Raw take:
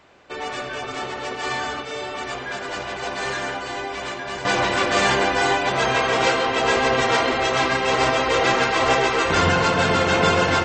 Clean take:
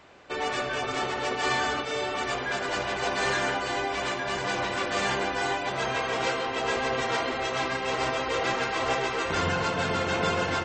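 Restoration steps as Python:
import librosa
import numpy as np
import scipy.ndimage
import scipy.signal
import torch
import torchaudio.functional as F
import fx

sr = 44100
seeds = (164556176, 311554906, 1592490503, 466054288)

y = fx.fix_echo_inverse(x, sr, delay_ms=93, level_db=-17.0)
y = fx.fix_level(y, sr, at_s=4.45, step_db=-8.5)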